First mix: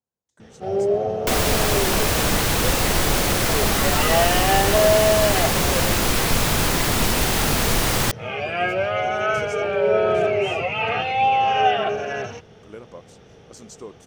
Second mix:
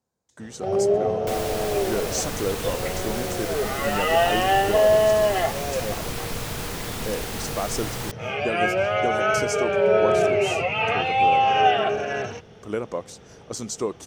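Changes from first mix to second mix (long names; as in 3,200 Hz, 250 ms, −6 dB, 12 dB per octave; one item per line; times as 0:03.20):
speech +11.5 dB
second sound −11.5 dB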